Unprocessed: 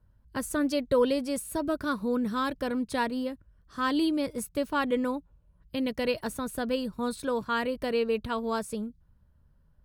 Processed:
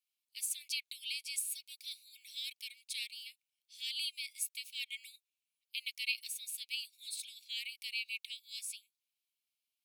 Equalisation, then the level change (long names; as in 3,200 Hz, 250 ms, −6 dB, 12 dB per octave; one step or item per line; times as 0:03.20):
Chebyshev high-pass filter 2,200 Hz, order 8
+2.0 dB